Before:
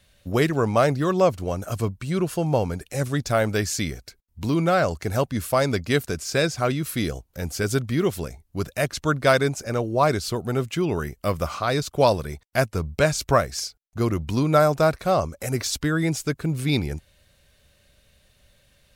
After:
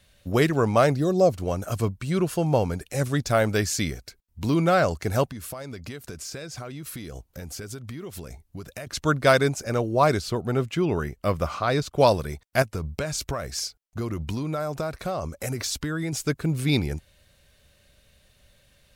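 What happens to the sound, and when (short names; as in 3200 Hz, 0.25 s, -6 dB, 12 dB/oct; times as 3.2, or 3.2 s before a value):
1–1.31 spectral gain 790–3600 Hz -13 dB
5.28–8.87 compressor 16:1, threshold -32 dBFS
10.21–11.98 high shelf 5200 Hz -8 dB
12.62–16.13 compressor 12:1, threshold -24 dBFS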